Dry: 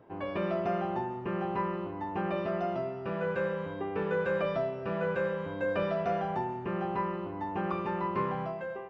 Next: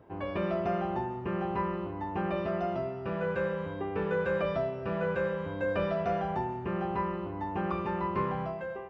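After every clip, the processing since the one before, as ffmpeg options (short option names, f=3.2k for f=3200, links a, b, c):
-af "equalizer=f=63:t=o:w=1.2:g=10.5"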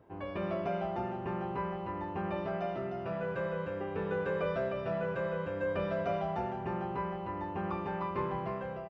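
-af "aecho=1:1:307:0.631,volume=-4.5dB"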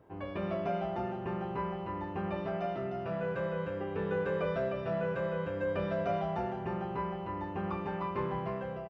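-filter_complex "[0:a]asplit=2[a][b];[b]adelay=30,volume=-11dB[c];[a][c]amix=inputs=2:normalize=0"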